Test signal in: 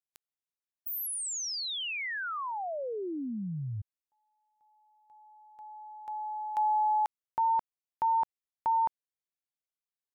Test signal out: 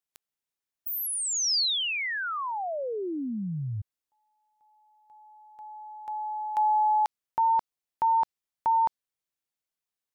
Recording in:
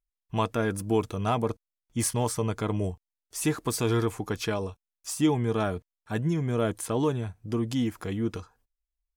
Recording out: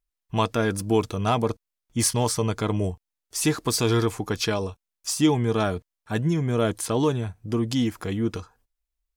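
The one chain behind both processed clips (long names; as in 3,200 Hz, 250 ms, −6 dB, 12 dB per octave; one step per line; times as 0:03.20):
dynamic equaliser 4,700 Hz, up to +7 dB, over −51 dBFS, Q 1.3
level +3.5 dB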